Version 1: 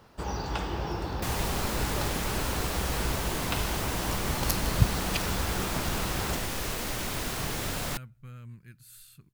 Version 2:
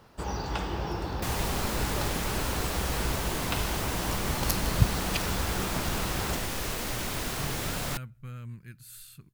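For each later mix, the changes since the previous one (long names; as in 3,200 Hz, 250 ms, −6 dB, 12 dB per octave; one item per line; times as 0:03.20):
speech +4.0 dB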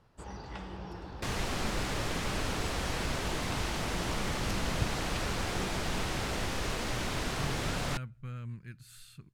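first sound −11.0 dB
master: add high-frequency loss of the air 56 metres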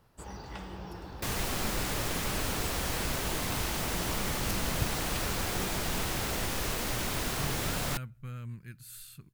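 master: remove high-frequency loss of the air 56 metres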